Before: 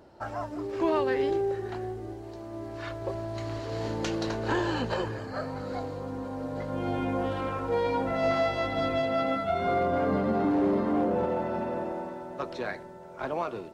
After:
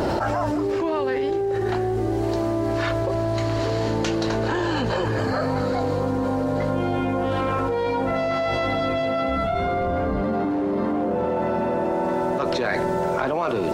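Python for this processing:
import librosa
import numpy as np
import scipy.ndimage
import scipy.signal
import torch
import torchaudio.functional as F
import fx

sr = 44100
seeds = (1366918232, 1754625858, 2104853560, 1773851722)

y = fx.octave_divider(x, sr, octaves=2, level_db=-1.0, at=(9.28, 10.22))
y = fx.env_flatten(y, sr, amount_pct=100)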